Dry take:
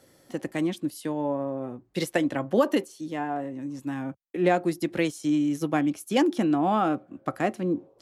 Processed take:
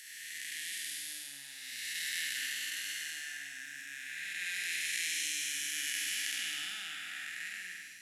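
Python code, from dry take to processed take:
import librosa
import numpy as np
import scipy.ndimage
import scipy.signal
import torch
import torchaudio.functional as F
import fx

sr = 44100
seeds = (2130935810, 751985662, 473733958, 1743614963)

y = fx.spec_blur(x, sr, span_ms=693.0)
y = scipy.signal.sosfilt(scipy.signal.ellip(4, 1.0, 40, 1700.0, 'highpass', fs=sr, output='sos'), y)
y = fx.high_shelf(y, sr, hz=4400.0, db=8.0)
y = fx.room_flutter(y, sr, wall_m=8.5, rt60_s=0.6)
y = y * librosa.db_to_amplitude(7.5)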